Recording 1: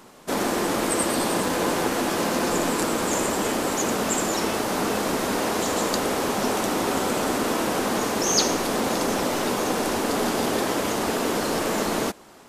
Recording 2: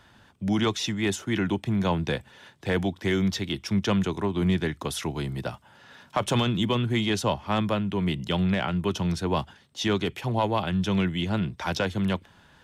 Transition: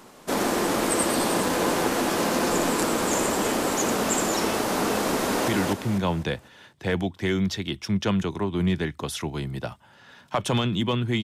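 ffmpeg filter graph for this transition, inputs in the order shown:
-filter_complex "[0:a]apad=whole_dur=11.23,atrim=end=11.23,atrim=end=5.482[a];[1:a]atrim=start=1.298:end=7.05[b];[a][b]acrossfade=d=0.004:c1=hsin:c2=hsin,asplit=2[c][d];[d]afade=t=in:st=5.21:d=0.01,afade=t=out:st=5.48:d=0.01,aecho=0:1:250|500|750|1000|1250:0.707946|0.247781|0.0867234|0.0303532|0.0106236[e];[c][e]amix=inputs=2:normalize=0"

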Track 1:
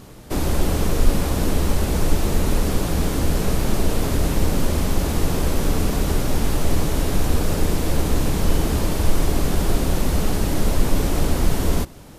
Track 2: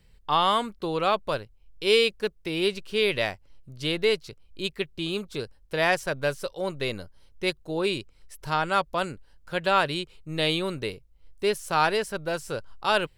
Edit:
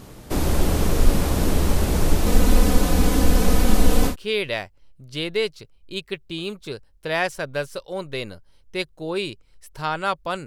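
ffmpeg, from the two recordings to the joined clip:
-filter_complex "[0:a]asettb=1/sr,asplit=3[a][b][c];[a]atrim=end=2.264[d];[b]atrim=start=2.26:end=4.16,asetpts=PTS-STARTPTS,afade=t=in:d=0.004:c=qsin,afade=t=out:st=1.896:d=0.004:c=qsin,aecho=1:1:4:0.85,atrim=end_sample=83790[e];[c]atrim=start=4.156[f];[d][e]acrossfade=d=0.004:c1=hsin:c2=qsin[g];[g][f]acrossfade=d=0.004:c1=qsin:c2=hsin,apad=whole_dur=10.46,atrim=end=10.46,atrim=end=4.16,asetpts=PTS-STARTPTS[h];[1:a]atrim=start=2.74:end=9.14,asetpts=PTS-STARTPTS[i];[h][i]acrossfade=d=0.1:c1=tri:c2=tri"

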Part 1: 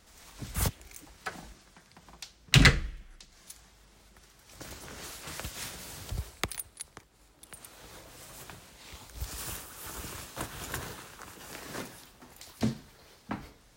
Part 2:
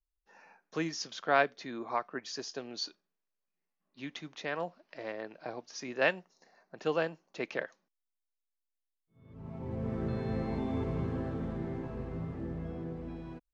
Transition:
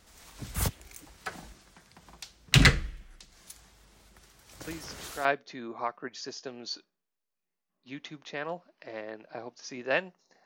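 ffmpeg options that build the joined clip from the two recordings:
-filter_complex "[1:a]asplit=2[a][b];[0:a]apad=whole_dur=10.45,atrim=end=10.45,atrim=end=5.252[c];[b]atrim=start=1.358:end=6.56[d];[a]atrim=start=0.78:end=1.36,asetpts=PTS-STARTPTS,volume=-7dB,afade=t=in:d=0.004:c=hsin,afade=t=out:st=0.576:d=0.004:c=hsin,adelay=4670[e];[c][d]acrossfade=d=0.004:c1=hsin:c2=hsin[f];[f][e]amix=inputs=2:normalize=0"

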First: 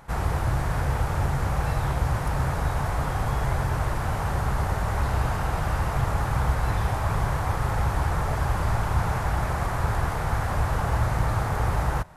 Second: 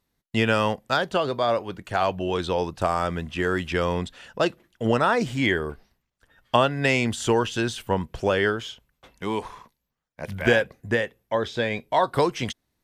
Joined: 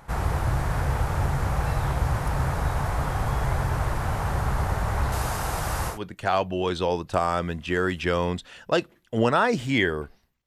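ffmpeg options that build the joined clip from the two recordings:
-filter_complex "[0:a]asettb=1/sr,asplit=3[a][b][c];[a]atrim=end=5.124[d];[b]atrim=start=5.12:end=5.99,asetpts=PTS-STARTPTS,afade=t=in:d=0.004:c=qsin,afade=t=out:st=0.866:d=0.004:c=qsin,bass=f=250:g=-4,treble=f=4k:g=10[e];[c]atrim=start=5.986[f];[d][e]acrossfade=d=0.004:c1=hsin:c2=qsin[g];[g][f]acrossfade=d=0.004:c1=qsin:c2=hsin,apad=whole_dur=10.46,atrim=end=10.46,atrim=end=5.99,asetpts=PTS-STARTPTS[h];[1:a]atrim=start=1.55:end=6.14,asetpts=PTS-STARTPTS[i];[h][i]acrossfade=d=0.12:c1=tri:c2=tri"

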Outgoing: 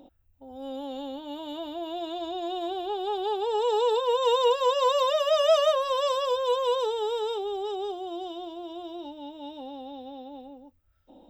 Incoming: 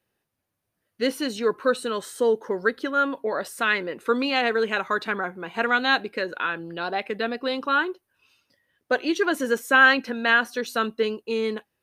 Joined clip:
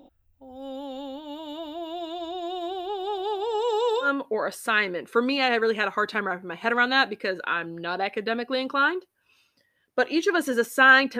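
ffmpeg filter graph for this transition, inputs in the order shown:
-filter_complex "[0:a]asplit=3[a][b][c];[a]afade=t=out:st=2.99:d=0.02[d];[b]aecho=1:1:747:0.133,afade=t=in:st=2.99:d=0.02,afade=t=out:st=4.1:d=0.02[e];[c]afade=t=in:st=4.1:d=0.02[f];[d][e][f]amix=inputs=3:normalize=0,apad=whole_dur=11.19,atrim=end=11.19,atrim=end=4.1,asetpts=PTS-STARTPTS[g];[1:a]atrim=start=2.93:end=10.12,asetpts=PTS-STARTPTS[h];[g][h]acrossfade=d=0.1:c1=tri:c2=tri"

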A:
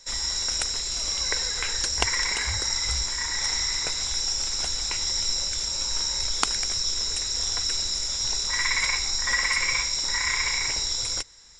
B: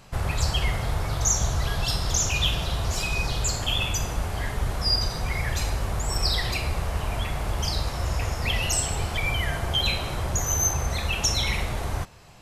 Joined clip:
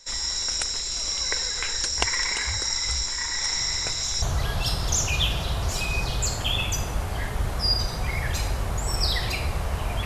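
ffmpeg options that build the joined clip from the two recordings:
-filter_complex "[1:a]asplit=2[a][b];[0:a]apad=whole_dur=10.05,atrim=end=10.05,atrim=end=4.222[c];[b]atrim=start=1.438:end=7.27[d];[a]atrim=start=0.79:end=1.44,asetpts=PTS-STARTPTS,volume=-13.5dB,afade=t=in:d=0.004:c=hsin,afade=t=out:st=0.646:d=0.004:c=hsin,adelay=157437S[e];[c][d]acrossfade=d=0.004:c1=hsin:c2=hsin[f];[f][e]amix=inputs=2:normalize=0"

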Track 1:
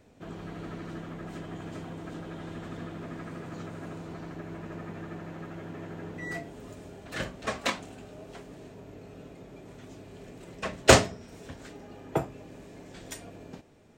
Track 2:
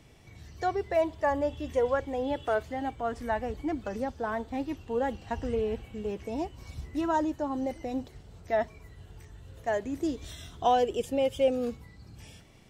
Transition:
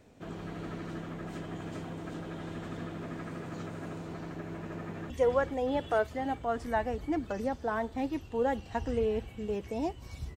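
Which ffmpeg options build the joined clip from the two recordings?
-filter_complex "[0:a]apad=whole_dur=10.36,atrim=end=10.36,atrim=end=5.102[a];[1:a]atrim=start=1.658:end=6.92[b];[a][b]acrossfade=d=0.004:c1=hsin:c2=hsin,asplit=2[c][d];[d]afade=t=in:st=4.78:d=0.01,afade=t=out:st=5.1:d=0.01,aecho=0:1:440|880|1320|1760|2200|2640|3080|3520|3960|4400|4840|5280:0.562341|0.421756|0.316317|0.237238|0.177928|0.133446|0.100085|0.0750635|0.0562976|0.0422232|0.0316674|0.0237506[e];[c][e]amix=inputs=2:normalize=0"

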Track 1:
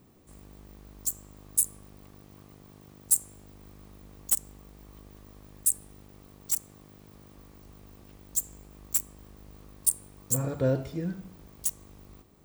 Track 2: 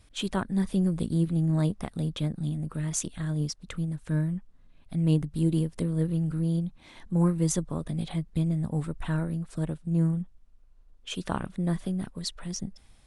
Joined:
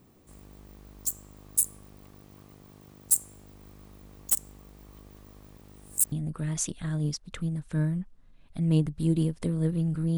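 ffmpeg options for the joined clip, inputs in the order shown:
-filter_complex "[0:a]apad=whole_dur=10.17,atrim=end=10.17,asplit=2[a][b];[a]atrim=end=5.582[c];[b]atrim=start=5.578:end=6.122,asetpts=PTS-STARTPTS,areverse[d];[1:a]atrim=start=2.478:end=6.53[e];[c][d]acrossfade=d=0.004:c1=hsin:c2=hsin[f];[f][e]acrossfade=d=0.004:c1=hsin:c2=hsin"

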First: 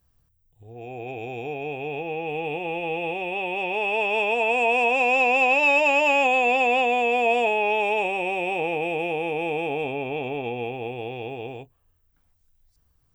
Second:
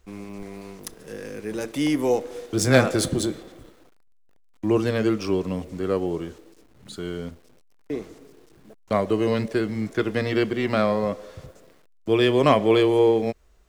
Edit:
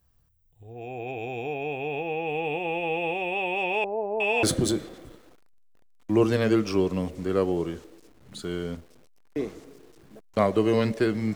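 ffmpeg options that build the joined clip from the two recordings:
-filter_complex "[0:a]asettb=1/sr,asplit=3[a][b][c];[a]atrim=end=3.844[d];[b]atrim=start=3.84:end=4.43,asetpts=PTS-STARTPTS,afade=t=in:d=0.004:c=qsin,afade=t=out:st=0.586:d=0.004:c=qsin,acrossover=split=810[e][f];[f]adelay=360[g];[e][g]amix=inputs=2:normalize=0,atrim=end_sample=26019[h];[c]atrim=start=4.426[i];[d][h]acrossfade=d=0.004:c1=hsin:c2=qsin[j];[j][i]acrossfade=d=0.004:c1=qsin:c2=hsin,apad=whole_dur=11.35,atrim=end=11.35,atrim=end=4.432[k];[1:a]atrim=start=2.968:end=9.89[l];[k][l]acrossfade=d=0.004:c1=hsin:c2=hsin"

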